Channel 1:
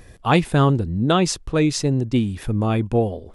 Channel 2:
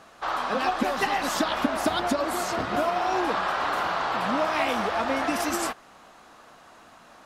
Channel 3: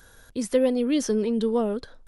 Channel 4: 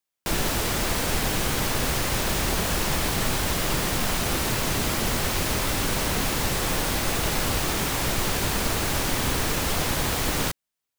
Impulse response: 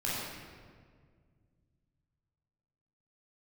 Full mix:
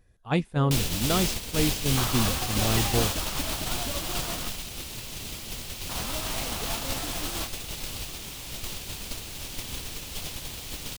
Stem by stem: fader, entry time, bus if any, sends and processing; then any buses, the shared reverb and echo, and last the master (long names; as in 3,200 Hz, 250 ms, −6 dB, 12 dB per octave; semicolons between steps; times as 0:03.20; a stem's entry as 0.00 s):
−9.5 dB, 0.00 s, no send, no processing
+0.5 dB, 1.75 s, muted 0:04.48–0:05.89, no send, brickwall limiter −17.5 dBFS, peak gain reduction 6.5 dB; downward compressor 5 to 1, threshold −31 dBFS, peak gain reduction 8.5 dB
−19.5 dB, 0.00 s, no send, no processing
−7.0 dB, 0.45 s, no send, high shelf with overshoot 2,200 Hz +7.5 dB, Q 1.5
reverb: not used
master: noise gate −25 dBFS, range −12 dB; low-shelf EQ 140 Hz +6.5 dB